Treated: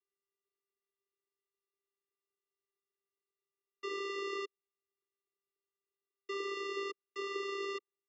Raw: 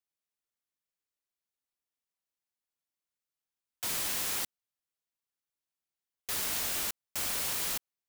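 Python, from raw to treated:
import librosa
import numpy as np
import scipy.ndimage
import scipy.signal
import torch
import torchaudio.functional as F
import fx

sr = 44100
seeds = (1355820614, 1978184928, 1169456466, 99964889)

y = fx.vocoder(x, sr, bands=8, carrier='square', carrier_hz=396.0)
y = fx.air_absorb(y, sr, metres=220.0)
y = y * librosa.db_to_amplitude(1.5)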